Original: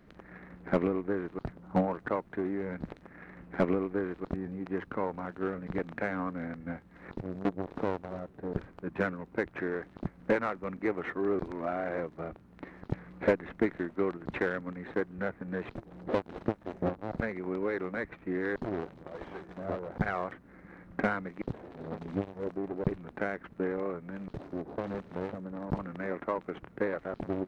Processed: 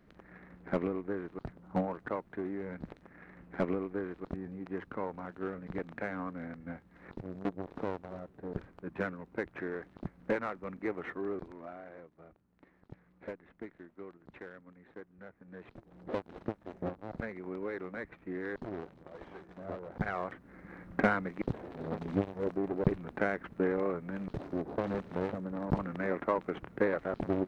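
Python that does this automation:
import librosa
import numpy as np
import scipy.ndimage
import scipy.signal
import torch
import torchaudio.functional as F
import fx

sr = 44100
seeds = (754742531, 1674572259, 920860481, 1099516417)

y = fx.gain(x, sr, db=fx.line((11.13, -4.5), (11.99, -17.0), (15.33, -17.0), (16.07, -6.0), (19.74, -6.0), (20.77, 2.0)))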